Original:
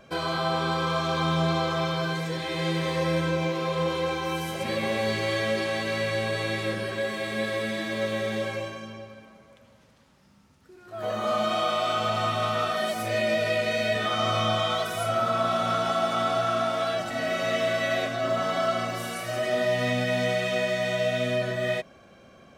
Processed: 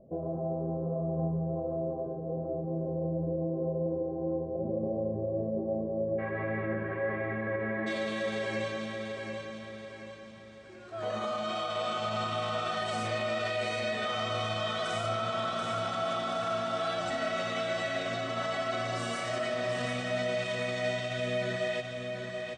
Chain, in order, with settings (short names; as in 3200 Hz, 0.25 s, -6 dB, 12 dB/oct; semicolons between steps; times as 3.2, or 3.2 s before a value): elliptic low-pass 660 Hz, stop band 80 dB, from 6.18 s 2000 Hz, from 7.86 s 8400 Hz; limiter -24 dBFS, peak gain reduction 8.5 dB; feedback echo 0.732 s, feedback 45%, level -5.5 dB; gain -1.5 dB